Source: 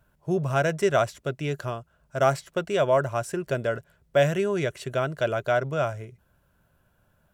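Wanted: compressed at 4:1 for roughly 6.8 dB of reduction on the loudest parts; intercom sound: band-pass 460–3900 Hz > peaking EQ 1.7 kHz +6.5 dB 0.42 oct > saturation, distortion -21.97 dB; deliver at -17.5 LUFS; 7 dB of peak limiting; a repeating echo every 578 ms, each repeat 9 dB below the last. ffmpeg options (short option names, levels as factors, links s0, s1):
-af "acompressor=threshold=0.0631:ratio=4,alimiter=limit=0.0891:level=0:latency=1,highpass=460,lowpass=3900,equalizer=f=1700:t=o:w=0.42:g=6.5,aecho=1:1:578|1156|1734|2312:0.355|0.124|0.0435|0.0152,asoftclip=threshold=0.0841,volume=7.5"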